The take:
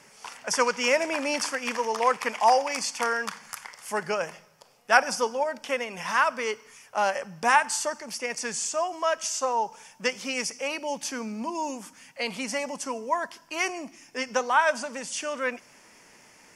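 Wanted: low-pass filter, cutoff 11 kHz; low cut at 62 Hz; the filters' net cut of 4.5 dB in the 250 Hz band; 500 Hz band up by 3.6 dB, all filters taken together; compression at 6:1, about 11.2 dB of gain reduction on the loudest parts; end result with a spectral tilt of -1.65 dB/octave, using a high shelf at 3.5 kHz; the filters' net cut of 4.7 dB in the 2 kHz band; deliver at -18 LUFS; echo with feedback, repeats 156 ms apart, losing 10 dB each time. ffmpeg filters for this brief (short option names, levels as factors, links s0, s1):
-af "highpass=62,lowpass=11000,equalizer=f=250:t=o:g=-7,equalizer=f=500:t=o:g=6,equalizer=f=2000:t=o:g=-5.5,highshelf=f=3500:g=-5,acompressor=threshold=0.0447:ratio=6,aecho=1:1:156|312|468|624:0.316|0.101|0.0324|0.0104,volume=5.31"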